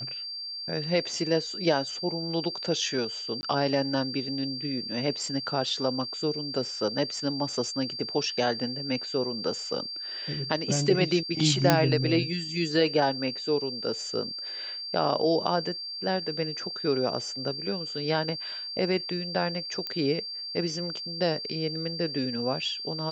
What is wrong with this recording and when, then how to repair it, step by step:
whistle 4,700 Hz −34 dBFS
0:03.41–0:03.43: drop-out 20 ms
0:11.70: click −4 dBFS
0:19.87: click −18 dBFS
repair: click removal
notch filter 4,700 Hz, Q 30
repair the gap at 0:03.41, 20 ms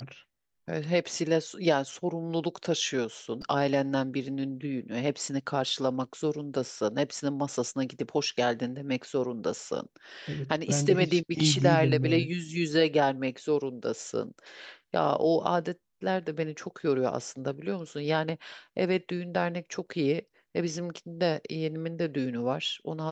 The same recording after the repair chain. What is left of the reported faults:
none of them is left

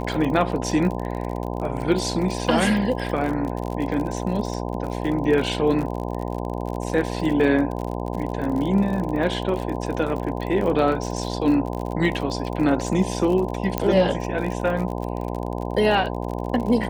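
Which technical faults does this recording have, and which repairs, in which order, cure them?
mains buzz 60 Hz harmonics 17 −28 dBFS
surface crackle 45 per second −28 dBFS
0:13.78: click −8 dBFS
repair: click removal
hum removal 60 Hz, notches 17

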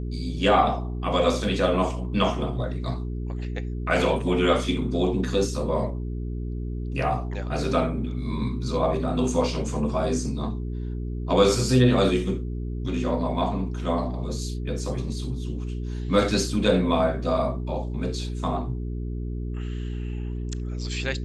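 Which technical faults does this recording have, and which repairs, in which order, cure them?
mains hum 60 Hz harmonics 7 −30 dBFS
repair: hum removal 60 Hz, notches 7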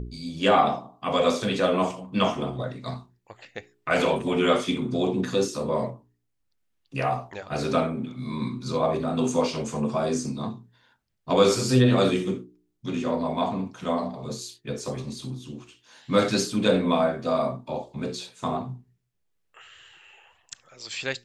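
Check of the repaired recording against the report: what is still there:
none of them is left

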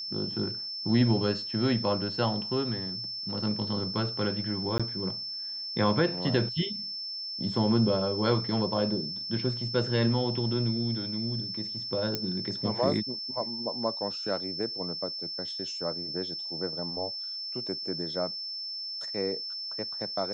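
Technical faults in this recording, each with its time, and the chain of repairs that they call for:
whistle 5,300 Hz −34 dBFS
0:04.78–0:04.80: drop-out 16 ms
0:12.15: click −14 dBFS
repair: click removal
notch filter 5,300 Hz, Q 30
repair the gap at 0:04.78, 16 ms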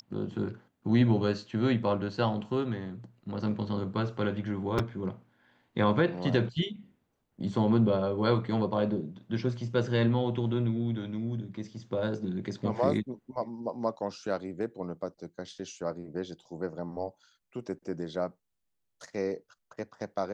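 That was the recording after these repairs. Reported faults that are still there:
none of them is left

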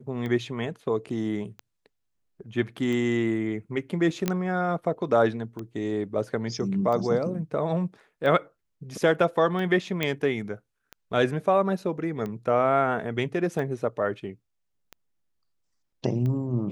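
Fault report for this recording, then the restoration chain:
scratch tick 45 rpm −22 dBFS
0:04.28: click −10 dBFS
0:10.03: click −12 dBFS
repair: click removal

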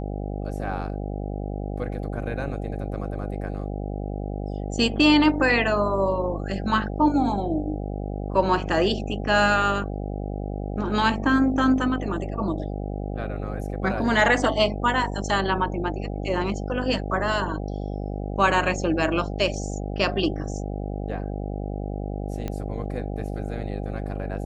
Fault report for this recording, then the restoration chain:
mains buzz 50 Hz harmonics 16 −30 dBFS
0:22.48: click −17 dBFS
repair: click removal
hum removal 50 Hz, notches 16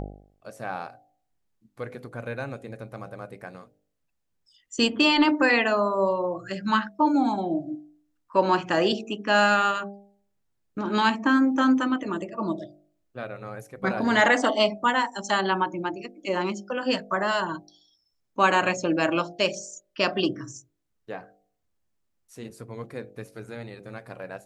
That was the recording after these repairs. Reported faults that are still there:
0:22.48: click

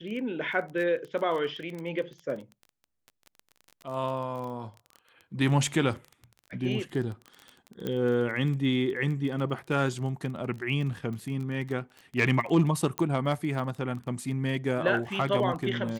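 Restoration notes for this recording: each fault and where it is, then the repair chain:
surface crackle 25 per second −35 dBFS
0:07.87: click −19 dBFS
0:12.98: click −14 dBFS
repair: click removal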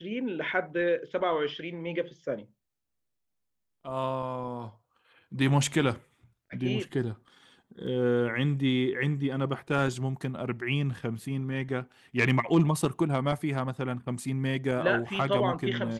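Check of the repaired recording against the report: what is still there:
0:07.87: click

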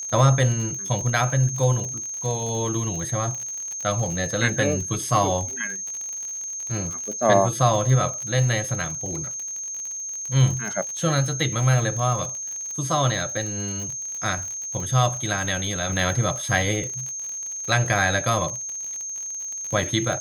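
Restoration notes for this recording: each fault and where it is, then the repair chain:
surface crackle 54 per second −29 dBFS
whistle 6,400 Hz −29 dBFS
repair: click removal
notch filter 6,400 Hz, Q 30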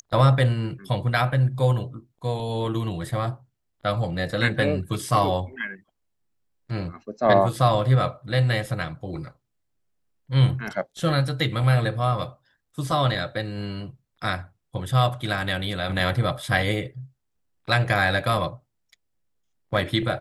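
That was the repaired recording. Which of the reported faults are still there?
none of them is left

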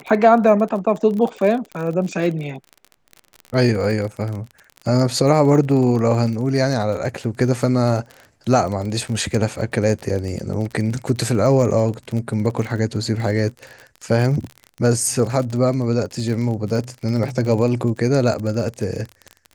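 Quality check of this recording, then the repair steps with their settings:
surface crackle 37 per second −26 dBFS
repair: click removal

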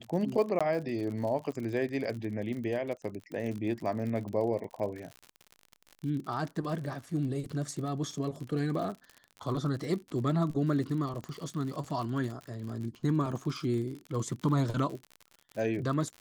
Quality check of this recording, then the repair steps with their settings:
surface crackle 60 per second −37 dBFS
0:00.59–0:00.61: drop-out 16 ms
0:11.24: click −27 dBFS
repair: click removal
repair the gap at 0:00.59, 16 ms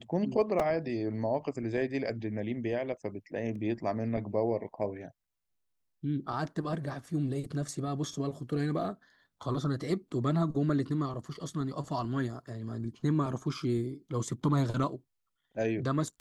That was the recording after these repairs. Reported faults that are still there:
0:11.24: click

